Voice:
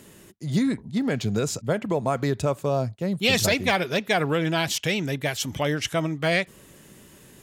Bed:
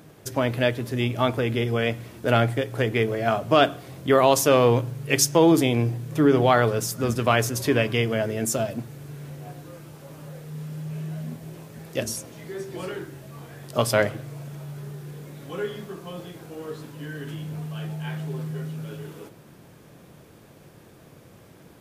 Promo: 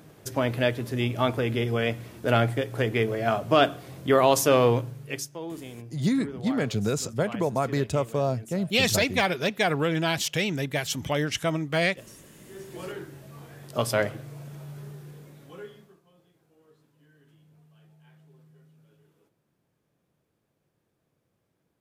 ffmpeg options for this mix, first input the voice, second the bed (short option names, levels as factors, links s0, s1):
-filter_complex "[0:a]adelay=5500,volume=0.841[s0];[1:a]volume=5.01,afade=t=out:st=4.64:d=0.66:silence=0.125893,afade=t=in:st=12.35:d=0.52:silence=0.158489,afade=t=out:st=14.81:d=1.21:silence=0.0841395[s1];[s0][s1]amix=inputs=2:normalize=0"